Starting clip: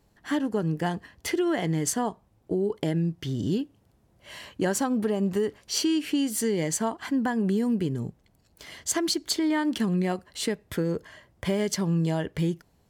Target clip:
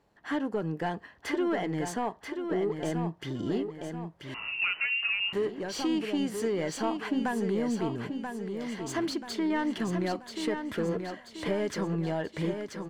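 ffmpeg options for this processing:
-filter_complex "[0:a]asplit=2[a][b];[b]highpass=f=720:p=1,volume=16dB,asoftclip=type=tanh:threshold=-12.5dB[c];[a][c]amix=inputs=2:normalize=0,lowpass=f=1.3k:p=1,volume=-6dB,aecho=1:1:984|1968|2952|3936|4920:0.473|0.218|0.1|0.0461|0.0212,asettb=1/sr,asplit=3[d][e][f];[d]atrim=end=4.344[g];[e]atrim=start=4.34:end=5.33,asetpts=PTS-STARTPTS,afade=t=in:d=0.004:c=qsin,afade=t=out:st=0.986:d=0.004:c=qsin,lowpass=f=2.6k:t=q:w=0.5098,lowpass=f=2.6k:t=q:w=0.6013,lowpass=f=2.6k:t=q:w=0.9,lowpass=f=2.6k:t=q:w=2.563,afreqshift=-3000[h];[f]atrim=start=5.326[i];[g][h]acrossfade=d=0.004:c1=hsin:c2=qsin[j];[j][i]acrossfade=d=0.004:c1=qsin:c2=hsin,volume=-6dB"

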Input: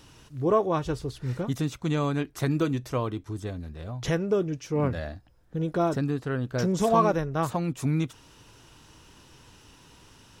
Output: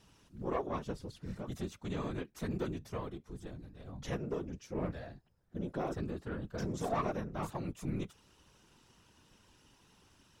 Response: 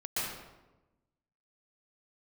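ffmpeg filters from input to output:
-af "aeval=exprs='(tanh(6.31*val(0)+0.4)-tanh(0.4))/6.31':c=same,afftfilt=real='hypot(re,im)*cos(2*PI*random(0))':imag='hypot(re,im)*sin(2*PI*random(1))':win_size=512:overlap=0.75,volume=-4dB"

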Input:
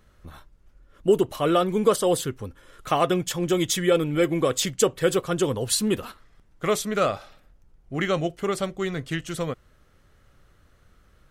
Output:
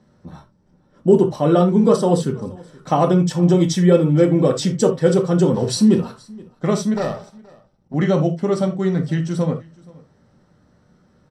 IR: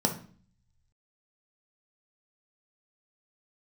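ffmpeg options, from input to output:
-filter_complex "[0:a]asettb=1/sr,asplit=3[a][b][c];[a]atrim=end=5.544[d];[b]atrim=start=5.54:end=5.97,asetpts=PTS-STARTPTS,afade=t=in:d=0.004:c=qsin,afade=t=out:st=0.426:d=0.004:c=qsin,aeval=exprs='val(0)+0.5*0.0224*sgn(val(0))':c=same[e];[c]atrim=start=5.966[f];[d][e]acrossfade=d=0.004:c1=hsin:c2=qsin[g];[g][f]acrossfade=d=0.004:c1=qsin:c2=hsin,lowpass=8.2k,asettb=1/sr,asplit=3[h][i][j];[h]atrim=end=6.944[k];[i]atrim=start=6.94:end=7.94,asetpts=PTS-STARTPTS,afade=t=in:d=0.004:c=qsin,afade=t=out:st=0.996:d=0.004:c=qsin,aeval=exprs='max(val(0),0)':c=same[l];[j]atrim=start=7.936[m];[k][l]acrossfade=d=0.004:c1=hsin:c2=qsin[n];[n][m]acrossfade=d=0.004:c1=qsin:c2=hsin,aecho=1:1:475:0.0631[o];[1:a]atrim=start_sample=2205,afade=t=out:st=0.14:d=0.01,atrim=end_sample=6615[p];[o][p]afir=irnorm=-1:irlink=0,volume=-7.5dB"

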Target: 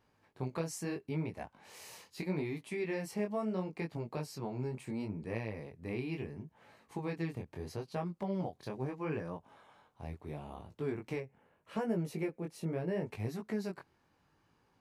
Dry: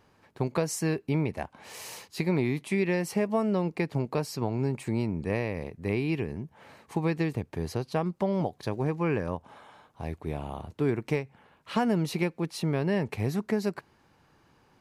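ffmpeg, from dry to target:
-filter_complex "[0:a]flanger=delay=17.5:depth=6.6:speed=0.75,asettb=1/sr,asplit=3[a][b][c];[a]atrim=end=11.204[d];[b]atrim=start=11.2:end=13.07,asetpts=PTS-STARTPTS,afade=t=in:d=0.004:c=qsin,afade=t=out:st=1.866:d=0.004:c=qsin,equalizer=f=500:t=o:w=1:g=5,equalizer=f=1k:t=o:w=1:g=-4,equalizer=f=4k:t=o:w=1:g=-9[e];[c]atrim=start=13.066[f];[d][e]acrossfade=d=0.004:c1=hsin:c2=qsin[g];[g][f]acrossfade=d=0.004:c1=qsin:c2=hsin,volume=-6.5dB"

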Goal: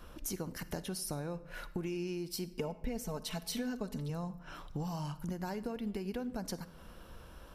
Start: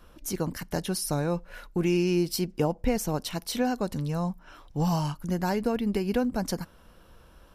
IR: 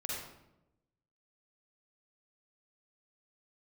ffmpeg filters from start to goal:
-filter_complex "[0:a]asettb=1/sr,asplit=3[a][b][c];[a]atrim=end=2.514[d];[b]atrim=start=2.51:end=4.1,asetpts=PTS-STARTPTS,afade=t=in:d=0.004:c=qsin,afade=t=out:st=1.586:d=0.004:c=qsin,aecho=1:1:4.6:0.9,atrim=end_sample=70119[e];[c]atrim=start=4.096[f];[d][e]acrossfade=d=0.004:c1=hsin:c2=qsin[g];[g][f]acrossfade=d=0.004:c1=qsin:c2=hsin,acompressor=threshold=-39dB:ratio=5,asplit=2[h][i];[1:a]atrim=start_sample=2205[j];[i][j]afir=irnorm=-1:irlink=0,volume=-15dB[k];[h][k]amix=inputs=2:normalize=0,volume=1dB"

